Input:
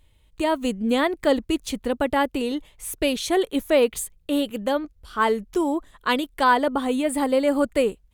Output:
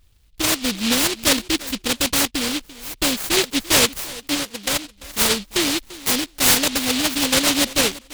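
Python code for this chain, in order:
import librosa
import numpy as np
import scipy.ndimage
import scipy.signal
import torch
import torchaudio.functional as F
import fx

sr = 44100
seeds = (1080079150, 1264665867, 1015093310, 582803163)

y = fx.bandpass_q(x, sr, hz=680.0, q=0.96, at=(4.34, 4.84), fade=0.02)
y = fx.echo_feedback(y, sr, ms=342, feedback_pct=15, wet_db=-18)
y = fx.noise_mod_delay(y, sr, seeds[0], noise_hz=3300.0, depth_ms=0.43)
y = y * 10.0 ** (2.0 / 20.0)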